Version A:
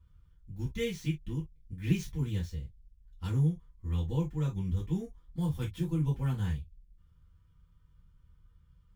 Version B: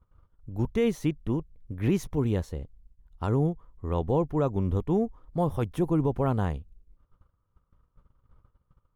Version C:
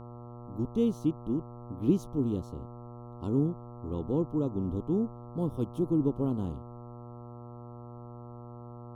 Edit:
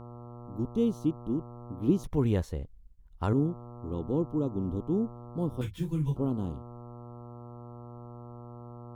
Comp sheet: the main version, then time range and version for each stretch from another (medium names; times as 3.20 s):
C
2.04–3.33 s: from B
5.61–6.16 s: from A